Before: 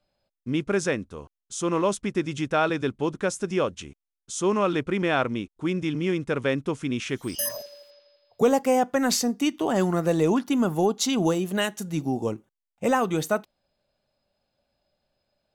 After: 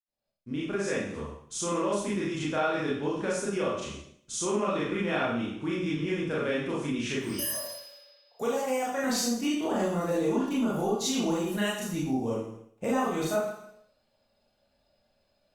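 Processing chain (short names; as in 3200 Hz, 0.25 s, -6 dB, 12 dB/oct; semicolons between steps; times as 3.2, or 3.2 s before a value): opening faded in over 1.09 s; 7.54–9.04 HPF 670 Hz 6 dB/oct; Schroeder reverb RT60 0.58 s, combs from 27 ms, DRR -7.5 dB; compressor 2:1, threshold -28 dBFS, peak gain reduction 11 dB; gain -4 dB; Opus 64 kbps 48000 Hz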